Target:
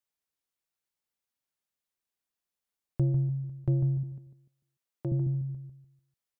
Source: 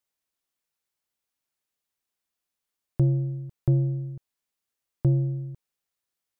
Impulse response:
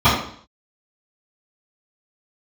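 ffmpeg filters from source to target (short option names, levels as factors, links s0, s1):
-filter_complex "[0:a]asettb=1/sr,asplit=3[s0][s1][s2];[s0]atrim=end=4.034[s3];[s1]atrim=start=4.03:end=5.12,asetpts=PTS-STARTPTS,afade=t=in:d=0.004:c=qsin,afade=t=out:st=1.086:d=0.004:c=qsin,highpass=200[s4];[s2]atrim=start=5.116[s5];[s3][s4]acrossfade=d=0.004:c1=hsin:c2=qsin[s6];[s6][s5]acrossfade=d=0.004:c1=qsin:c2=hsin,asplit=2[s7][s8];[s8]adelay=148,lowpass=f=890:p=1,volume=0.501,asplit=2[s9][s10];[s10]adelay=148,lowpass=f=890:p=1,volume=0.32,asplit=2[s11][s12];[s12]adelay=148,lowpass=f=890:p=1,volume=0.32,asplit=2[s13][s14];[s14]adelay=148,lowpass=f=890:p=1,volume=0.32[s15];[s7][s9][s11][s13][s15]amix=inputs=5:normalize=0,volume=0.562"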